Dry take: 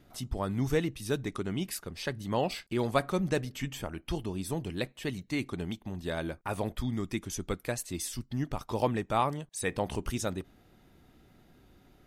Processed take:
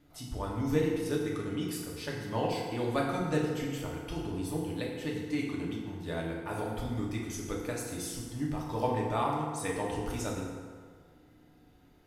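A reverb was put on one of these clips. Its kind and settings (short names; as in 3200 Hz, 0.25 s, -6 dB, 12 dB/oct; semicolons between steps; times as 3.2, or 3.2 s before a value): FDN reverb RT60 1.8 s, low-frequency decay 0.85×, high-frequency decay 0.6×, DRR -3.5 dB; gain -6.5 dB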